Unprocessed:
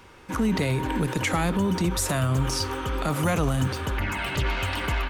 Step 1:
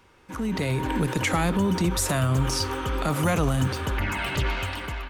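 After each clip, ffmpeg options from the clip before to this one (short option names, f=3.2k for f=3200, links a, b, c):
-af "dynaudnorm=f=170:g=7:m=8.5dB,volume=-7.5dB"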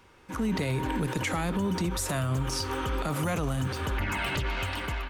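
-af "alimiter=limit=-21dB:level=0:latency=1:release=152"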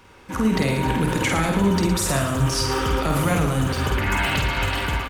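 -af "aecho=1:1:50|112.5|190.6|288.3|410.4:0.631|0.398|0.251|0.158|0.1,volume=6.5dB"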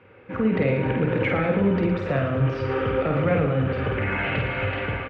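-af "highpass=100,equalizer=f=110:t=q:w=4:g=9,equalizer=f=500:t=q:w=4:g=10,equalizer=f=970:t=q:w=4:g=-8,equalizer=f=2.4k:t=q:w=4:g=3,lowpass=f=2.5k:w=0.5412,lowpass=f=2.5k:w=1.3066,volume=-2.5dB"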